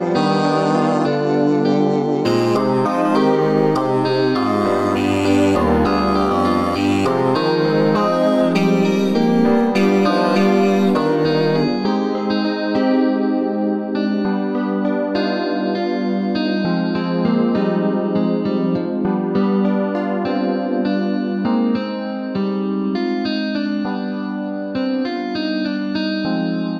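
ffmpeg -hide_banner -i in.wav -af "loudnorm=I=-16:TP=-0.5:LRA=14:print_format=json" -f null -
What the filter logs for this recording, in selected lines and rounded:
"input_i" : "-18.1",
"input_tp" : "-2.5",
"input_lra" : "5.7",
"input_thresh" : "-28.1",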